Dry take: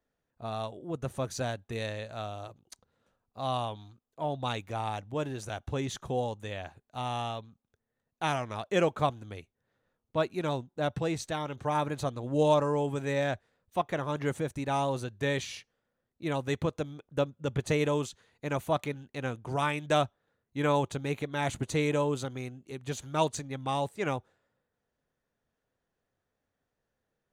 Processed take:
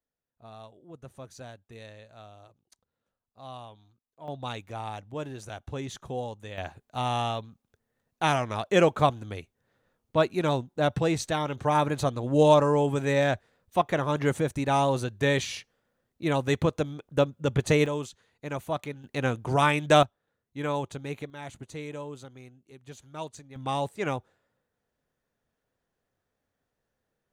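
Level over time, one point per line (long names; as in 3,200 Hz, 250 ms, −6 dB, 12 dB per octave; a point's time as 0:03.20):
−11 dB
from 0:04.28 −2.5 dB
from 0:06.58 +5.5 dB
from 0:17.86 −2 dB
from 0:19.04 +7 dB
from 0:20.03 −3 dB
from 0:21.30 −10 dB
from 0:23.56 +1.5 dB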